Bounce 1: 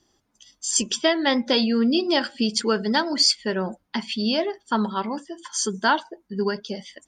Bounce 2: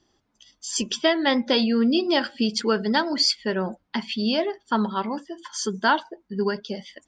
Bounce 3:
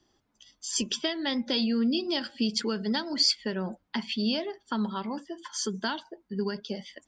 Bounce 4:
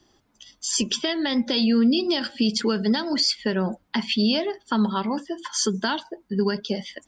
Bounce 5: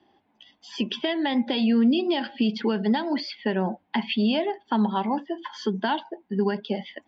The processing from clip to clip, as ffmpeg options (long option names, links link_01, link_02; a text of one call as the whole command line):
ffmpeg -i in.wav -af "lowpass=5100" out.wav
ffmpeg -i in.wav -filter_complex "[0:a]acrossover=split=240|3000[link_01][link_02][link_03];[link_02]acompressor=threshold=-29dB:ratio=6[link_04];[link_01][link_04][link_03]amix=inputs=3:normalize=0,volume=-2.5dB" out.wav
ffmpeg -i in.wav -af "alimiter=limit=-20.5dB:level=0:latency=1:release=63,volume=8dB" out.wav
ffmpeg -i in.wav -af "highpass=130,equalizer=frequency=130:width_type=q:width=4:gain=-9,equalizer=frequency=490:width_type=q:width=4:gain=-3,equalizer=frequency=800:width_type=q:width=4:gain=8,equalizer=frequency=1300:width_type=q:width=4:gain=-9,lowpass=frequency=3200:width=0.5412,lowpass=frequency=3200:width=1.3066" out.wav